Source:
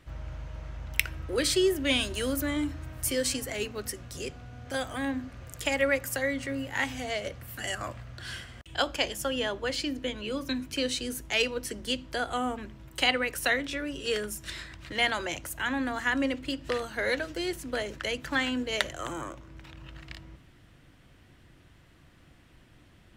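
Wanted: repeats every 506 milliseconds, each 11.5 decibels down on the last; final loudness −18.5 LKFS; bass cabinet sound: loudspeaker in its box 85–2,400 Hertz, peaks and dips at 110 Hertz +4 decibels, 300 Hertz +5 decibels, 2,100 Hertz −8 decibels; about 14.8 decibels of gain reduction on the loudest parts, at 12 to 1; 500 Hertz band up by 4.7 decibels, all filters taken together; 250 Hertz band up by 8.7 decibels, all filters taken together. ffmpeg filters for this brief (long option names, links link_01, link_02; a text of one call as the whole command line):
ffmpeg -i in.wav -af "equalizer=frequency=250:width_type=o:gain=5.5,equalizer=frequency=500:width_type=o:gain=3.5,acompressor=threshold=-32dB:ratio=12,highpass=frequency=85:width=0.5412,highpass=frequency=85:width=1.3066,equalizer=frequency=110:width_type=q:width=4:gain=4,equalizer=frequency=300:width_type=q:width=4:gain=5,equalizer=frequency=2100:width_type=q:width=4:gain=-8,lowpass=frequency=2400:width=0.5412,lowpass=frequency=2400:width=1.3066,aecho=1:1:506|1012|1518:0.266|0.0718|0.0194,volume=18dB" out.wav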